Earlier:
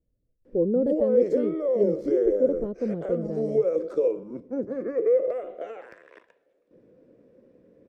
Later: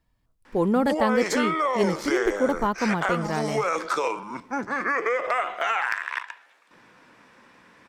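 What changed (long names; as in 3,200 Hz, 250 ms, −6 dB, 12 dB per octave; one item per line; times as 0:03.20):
speech +4.5 dB
master: remove drawn EQ curve 220 Hz 0 dB, 530 Hz +7 dB, 880 Hz −25 dB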